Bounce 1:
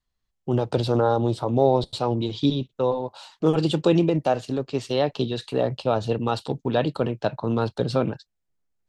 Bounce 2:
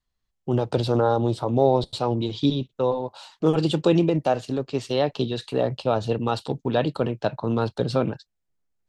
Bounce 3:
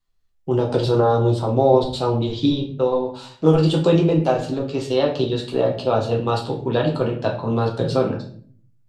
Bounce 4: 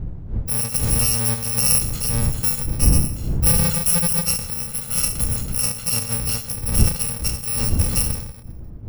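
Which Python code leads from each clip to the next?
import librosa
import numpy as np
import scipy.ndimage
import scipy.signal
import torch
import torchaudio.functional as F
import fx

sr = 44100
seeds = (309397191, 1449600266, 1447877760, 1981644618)

y1 = x
y2 = fx.room_shoebox(y1, sr, seeds[0], volume_m3=54.0, walls='mixed', distance_m=0.7)
y3 = fx.bit_reversed(y2, sr, seeds[1], block=128)
y3 = fx.dmg_wind(y3, sr, seeds[2], corner_hz=94.0, level_db=-21.0)
y3 = F.gain(torch.from_numpy(y3), -3.0).numpy()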